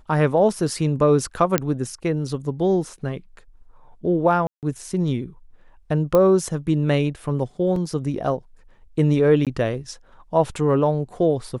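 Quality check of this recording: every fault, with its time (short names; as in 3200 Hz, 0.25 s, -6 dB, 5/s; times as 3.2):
1.58 pop -3 dBFS
4.47–4.63 gap 0.158 s
6.15 pop -8 dBFS
7.76 gap 2.8 ms
9.45–9.47 gap 17 ms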